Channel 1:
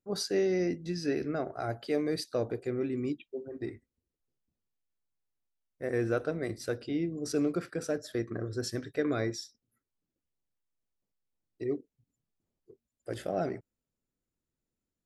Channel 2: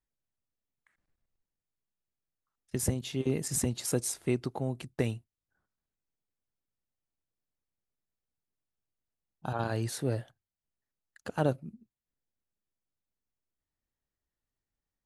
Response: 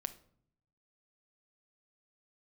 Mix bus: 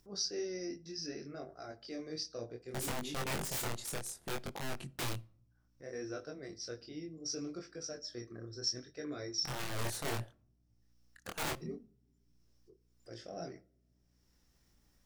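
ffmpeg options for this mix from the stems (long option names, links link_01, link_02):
-filter_complex "[0:a]lowpass=frequency=5500:width_type=q:width=11,bandreject=frequency=880:width=13,volume=-13.5dB,asplit=2[link_01][link_02];[link_02]volume=-4dB[link_03];[1:a]adynamicequalizer=threshold=0.00316:dfrequency=2200:dqfactor=0.75:tfrequency=2200:tqfactor=0.75:attack=5:release=100:ratio=0.375:range=3:mode=cutabove:tftype=bell,tremolo=f=0.6:d=0.54,aeval=exprs='(mod(29.9*val(0)+1,2)-1)/29.9':channel_layout=same,volume=-1.5dB,asplit=2[link_04][link_05];[link_05]volume=-7dB[link_06];[2:a]atrim=start_sample=2205[link_07];[link_03][link_06]amix=inputs=2:normalize=0[link_08];[link_08][link_07]afir=irnorm=-1:irlink=0[link_09];[link_01][link_04][link_09]amix=inputs=3:normalize=0,flanger=delay=20:depth=6.3:speed=0.65,acompressor=mode=upward:threshold=-55dB:ratio=2.5,aeval=exprs='val(0)+0.000224*(sin(2*PI*60*n/s)+sin(2*PI*2*60*n/s)/2+sin(2*PI*3*60*n/s)/3+sin(2*PI*4*60*n/s)/4+sin(2*PI*5*60*n/s)/5)':channel_layout=same"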